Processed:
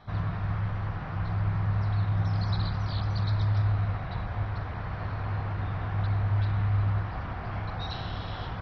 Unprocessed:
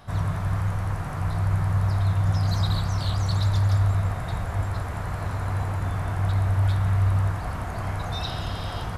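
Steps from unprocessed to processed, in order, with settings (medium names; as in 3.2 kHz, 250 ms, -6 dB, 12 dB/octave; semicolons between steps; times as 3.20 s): low-pass 4.2 kHz 24 dB/octave; speed mistake 24 fps film run at 25 fps; trim -4.5 dB; MP2 32 kbps 24 kHz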